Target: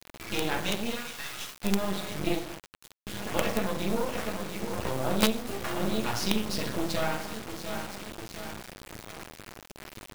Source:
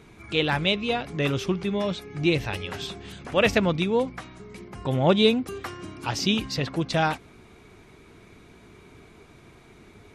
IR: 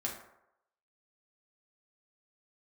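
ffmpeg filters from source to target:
-filter_complex "[0:a]aecho=1:1:698|1396|2094|2792:0.141|0.0706|0.0353|0.0177,acompressor=threshold=-28dB:ratio=16,asettb=1/sr,asplit=3[link_01][link_02][link_03];[link_01]atrim=end=2.354[link_04];[link_02]atrim=start=2.35:end=3.07,asetpts=PTS-STARTPTS,afade=type=in:duration=0.004:curve=qsin,afade=type=out:start_time=0.716:duration=0.004:curve=qsin,agate=range=-33dB:threshold=-22dB:ratio=3:detection=peak[link_05];[link_03]atrim=start=3.066[link_06];[link_04][link_05]acrossfade=duration=0.004:curve1=hsin:curve2=qsin[link_07];[link_07][link_06]acrossfade=duration=0.004:curve1=qsin:curve2=hsin,acrusher=bits=5:mode=log:mix=0:aa=0.000001,asplit=3[link_08][link_09][link_10];[link_08]afade=type=out:start_time=0.89:duration=0.02[link_11];[link_09]highpass=frequency=1200:width=0.5412,highpass=frequency=1200:width=1.3066,afade=type=in:start_time=0.89:duration=0.02,afade=type=out:start_time=1.62:duration=0.02[link_12];[link_10]afade=type=in:start_time=1.62:duration=0.02[link_13];[link_11][link_12][link_13]amix=inputs=3:normalize=0[link_14];[1:a]atrim=start_sample=2205,afade=type=out:start_time=0.35:duration=0.01,atrim=end_sample=15876,asetrate=40572,aresample=44100[link_15];[link_14][link_15]afir=irnorm=-1:irlink=0,acrusher=bits=4:dc=4:mix=0:aa=0.000001,volume=3.5dB"

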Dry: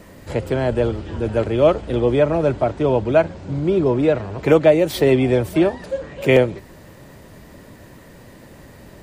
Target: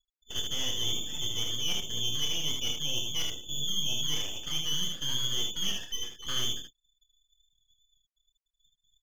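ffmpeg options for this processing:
ffmpeg -i in.wav -filter_complex "[0:a]lowpass=frequency=3100:width_type=q:width=0.5098,lowpass=frequency=3100:width_type=q:width=0.6013,lowpass=frequency=3100:width_type=q:width=0.9,lowpass=frequency=3100:width_type=q:width=2.563,afreqshift=-3600,agate=range=-12dB:threshold=-32dB:ratio=16:detection=peak,areverse,acompressor=threshold=-20dB:ratio=16,areverse,asoftclip=type=tanh:threshold=-15dB,afftfilt=real='re*gte(hypot(re,im),0.0158)':imag='im*gte(hypot(re,im),0.0158)':win_size=1024:overlap=0.75,aeval=exprs='max(val(0),0)':channel_layout=same,asplit=2[link_01][link_02];[link_02]aecho=0:1:27|77:0.447|0.596[link_03];[link_01][link_03]amix=inputs=2:normalize=0,volume=-4.5dB" out.wav

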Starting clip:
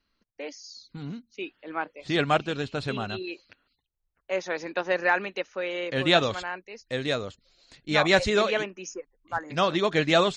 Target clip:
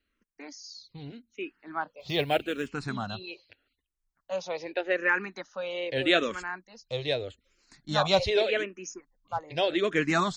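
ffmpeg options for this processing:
ffmpeg -i in.wav -filter_complex "[0:a]asettb=1/sr,asplit=3[link_01][link_02][link_03];[link_01]atrim=end=2.004[link_04];[link_02]atrim=start=2:end=2.68,asetpts=PTS-STARTPTS,afade=type=in:duration=0.004:curve=qsin,afade=type=out:start_time=0.676:duration=0.004:curve=qsin,acrusher=bits=7:mode=log:mix=0:aa=0.000001[link_05];[link_03]atrim=start=2.676[link_06];[link_04][link_05]acrossfade=duration=0.004:curve1=hsin:curve2=qsin[link_07];[link_07][link_06]acrossfade=duration=0.004:curve1=qsin:curve2=hsin,asplit=2[link_08][link_09];[link_09]afreqshift=-0.82[link_10];[link_08][link_10]amix=inputs=2:normalize=1" out.wav

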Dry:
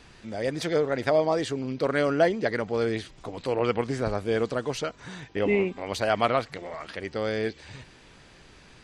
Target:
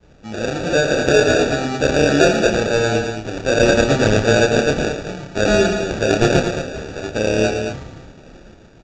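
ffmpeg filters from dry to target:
ffmpeg -i in.wav -filter_complex "[0:a]acrusher=samples=42:mix=1:aa=0.000001,aresample=16000,aresample=44100,acontrast=63,asplit=2[link_01][link_02];[link_02]adelay=28,volume=-5.5dB[link_03];[link_01][link_03]amix=inputs=2:normalize=0,aecho=1:1:113.7|221.6:0.398|0.398,agate=range=-33dB:threshold=-39dB:ratio=3:detection=peak,dynaudnorm=framelen=350:gausssize=5:maxgain=11.5dB,volume=-1dB" out.wav

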